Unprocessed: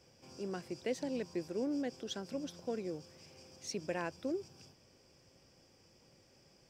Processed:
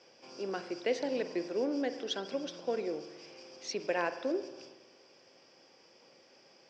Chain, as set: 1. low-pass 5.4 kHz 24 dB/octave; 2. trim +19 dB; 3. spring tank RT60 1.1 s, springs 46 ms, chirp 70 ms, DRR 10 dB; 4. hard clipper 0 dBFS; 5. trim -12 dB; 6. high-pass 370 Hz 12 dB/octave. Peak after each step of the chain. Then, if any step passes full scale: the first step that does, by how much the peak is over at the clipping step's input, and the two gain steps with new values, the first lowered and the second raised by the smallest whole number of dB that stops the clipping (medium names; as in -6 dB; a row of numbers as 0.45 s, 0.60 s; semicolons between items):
-24.5 dBFS, -5.5 dBFS, -4.5 dBFS, -4.5 dBFS, -16.5 dBFS, -19.0 dBFS; nothing clips